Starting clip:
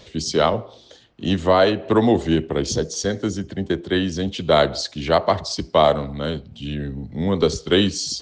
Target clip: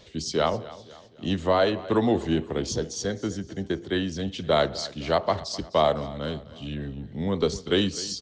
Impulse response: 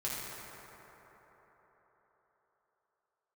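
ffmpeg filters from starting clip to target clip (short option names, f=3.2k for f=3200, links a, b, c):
-af "aecho=1:1:256|512|768|1024:0.126|0.0567|0.0255|0.0115,volume=-6dB"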